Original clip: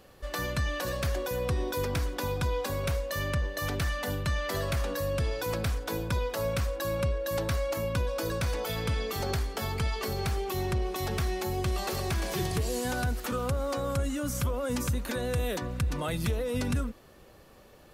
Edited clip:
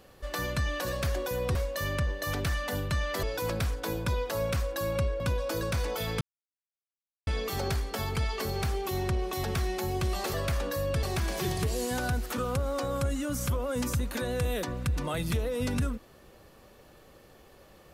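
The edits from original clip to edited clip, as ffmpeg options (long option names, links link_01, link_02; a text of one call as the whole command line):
ffmpeg -i in.wav -filter_complex "[0:a]asplit=7[link_01][link_02][link_03][link_04][link_05][link_06][link_07];[link_01]atrim=end=1.552[link_08];[link_02]atrim=start=2.898:end=4.582[link_09];[link_03]atrim=start=5.268:end=7.242[link_10];[link_04]atrim=start=7.888:end=8.9,asetpts=PTS-STARTPTS,afade=type=out:start_time=1.008:duration=0.004:curve=hsin,apad=pad_dur=1.06[link_11];[link_05]atrim=start=8.9:end=11.972,asetpts=PTS-STARTPTS,afade=type=in:duration=0.004:curve=hsin[link_12];[link_06]atrim=start=4.578:end=5.272[link_13];[link_07]atrim=start=11.968[link_14];[link_08][link_09]acrossfade=duration=0.004:curve1=hsin:curve2=hsin[link_15];[link_15][link_10]acrossfade=duration=0.004:curve1=hsin:curve2=hsin[link_16];[link_11][link_12]concat=n=2:v=0:a=1[link_17];[link_16][link_17]acrossfade=duration=0.004:curve1=hsin:curve2=hsin[link_18];[link_18][link_13]acrossfade=duration=0.004:curve1=hsin:curve2=hsin[link_19];[link_19][link_14]acrossfade=duration=0.004:curve1=hsin:curve2=hsin" out.wav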